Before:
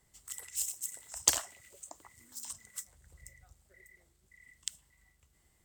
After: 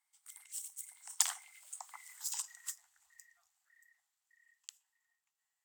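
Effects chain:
one scale factor per block 7 bits
source passing by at 0:02.12, 20 m/s, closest 5.9 metres
elliptic high-pass filter 780 Hz, stop band 40 dB
level +7 dB

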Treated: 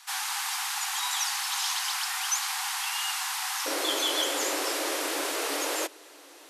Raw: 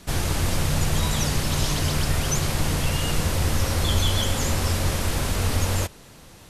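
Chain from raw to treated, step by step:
Chebyshev high-pass filter 750 Hz, order 10, from 0:03.65 280 Hz

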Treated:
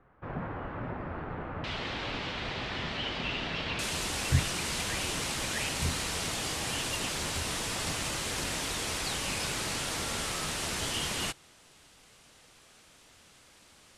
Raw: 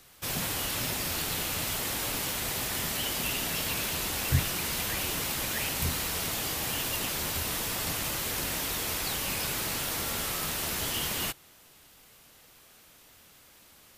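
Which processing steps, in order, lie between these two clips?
low-pass filter 1,500 Hz 24 dB per octave, from 0:01.64 3,900 Hz, from 0:03.79 9,600 Hz

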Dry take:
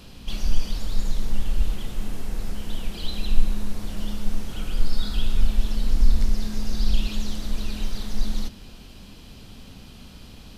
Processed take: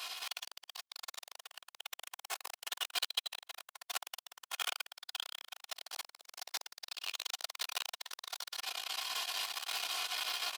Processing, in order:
multi-voice chorus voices 4, 0.36 Hz, delay 19 ms, depth 3.4 ms
in parallel at −11 dB: bit reduction 6 bits
on the sum: downward compressor 6 to 1, threshold −27 dBFS, peak gain reduction 21.5 dB
on a send at −8 dB: convolution reverb RT60 2.2 s, pre-delay 4 ms
on the sum: automatic gain control gain up to 5 dB
comb filter 2.8 ms, depth 61%
repeating echo 124 ms, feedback 19%, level −5.5 dB
brickwall limiter −15.5 dBFS, peak gain reduction 12 dB
soft clipping −29.5 dBFS, distortion −8 dB
high-pass filter 770 Hz 24 dB per octave
level +11.5 dB

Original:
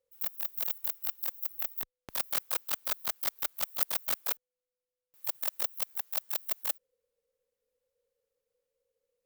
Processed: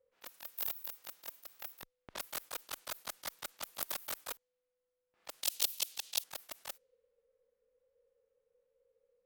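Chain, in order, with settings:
harmonic and percussive parts rebalanced percussive −13 dB
low-pass that shuts in the quiet parts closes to 1,900 Hz, open at −41 dBFS
0:05.43–0:06.24: high shelf with overshoot 2,300 Hz +12 dB, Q 1.5
level +7.5 dB

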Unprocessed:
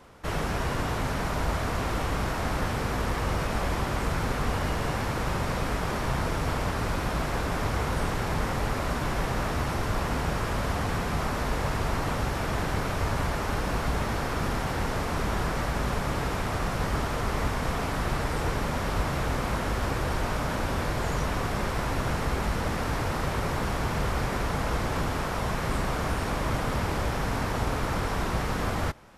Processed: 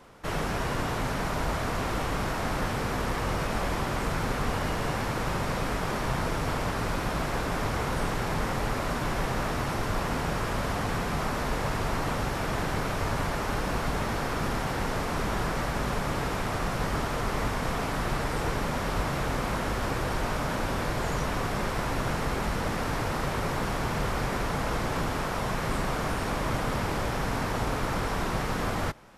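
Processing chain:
parametric band 69 Hz −8 dB 0.63 octaves

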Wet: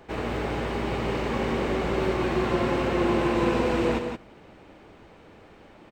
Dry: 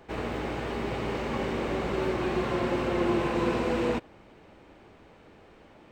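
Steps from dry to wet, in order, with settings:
single-tap delay 171 ms −6.5 dB
level +2.5 dB

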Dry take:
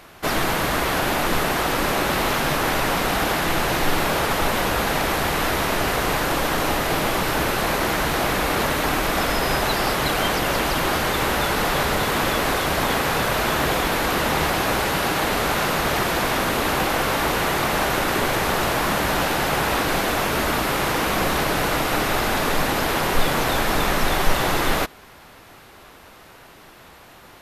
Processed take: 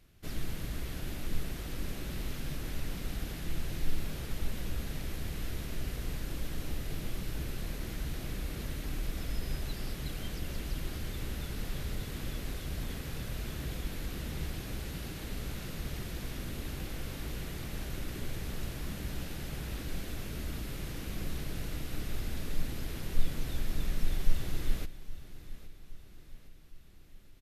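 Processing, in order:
guitar amp tone stack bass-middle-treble 10-0-1
on a send: repeating echo 816 ms, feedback 53%, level −16 dB
on the sum: level +1.5 dB

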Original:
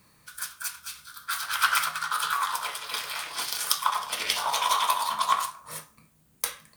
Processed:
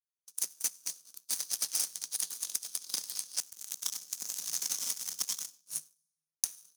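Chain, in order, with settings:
0:03.40–0:05.60: gap after every zero crossing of 0.14 ms
downward expander −49 dBFS
inverse Chebyshev band-stop filter 310–2,100 Hz, stop band 50 dB
parametric band 10,000 Hz +5 dB 0.2 octaves
convolution reverb RT60 1.7 s, pre-delay 49 ms, DRR 9 dB
leveller curve on the samples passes 3
thirty-one-band graphic EQ 800 Hz −6 dB, 2,000 Hz −10 dB, 6,300 Hz +11 dB
harmonic generator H 3 −31 dB, 7 −19 dB, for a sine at −1 dBFS
downward compressor 6 to 1, threshold −29 dBFS, peak gain reduction 14 dB
Chebyshev high-pass filter 170 Hz, order 5
buffer that repeats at 0:01.74/0:02.45/0:04.80, samples 2,048, times 1

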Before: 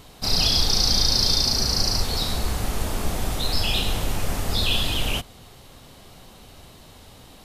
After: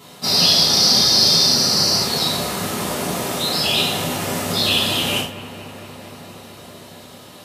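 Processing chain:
high-pass filter 120 Hz 24 dB per octave
on a send: bucket-brigade delay 231 ms, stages 4,096, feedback 83%, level −15 dB
on the sum: reverb whose tail is shaped and stops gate 130 ms falling, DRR −6 dB

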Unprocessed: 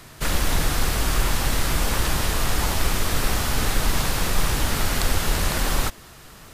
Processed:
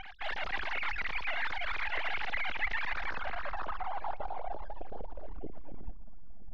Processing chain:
three sine waves on the formant tracks
reversed playback
downward compressor 8 to 1, threshold −31 dBFS, peak gain reduction 17 dB
reversed playback
full-wave rectification
echo machine with several playback heads 112 ms, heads second and third, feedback 73%, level −24 dB
low-pass filter sweep 2,000 Hz → 190 Hz, 0:02.81–0:06.35

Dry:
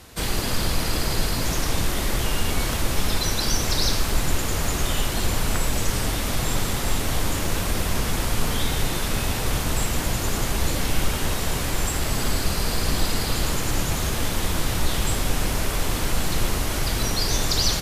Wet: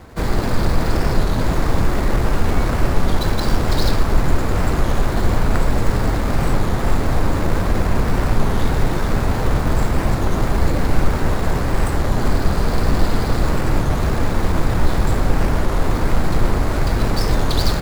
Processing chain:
running median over 15 samples
wow of a warped record 33 1/3 rpm, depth 160 cents
level +7.5 dB

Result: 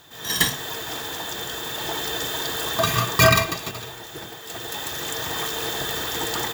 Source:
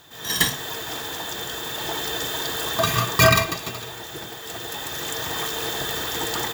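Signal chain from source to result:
0:03.71–0:04.92: multiband upward and downward expander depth 70%

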